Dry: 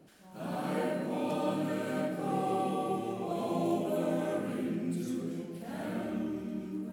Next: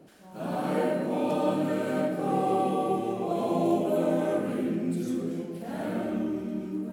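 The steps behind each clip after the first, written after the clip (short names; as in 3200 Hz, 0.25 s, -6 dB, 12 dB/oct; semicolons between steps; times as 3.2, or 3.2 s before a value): bell 480 Hz +4.5 dB 2.5 oct; gain +2 dB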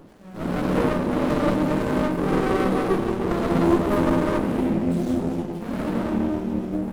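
running maximum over 33 samples; gain +7.5 dB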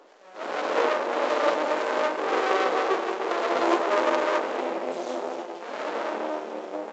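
added harmonics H 3 -18 dB, 8 -31 dB, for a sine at -8.5 dBFS; HPF 450 Hz 24 dB/oct; gain +5 dB; µ-law 128 kbps 16000 Hz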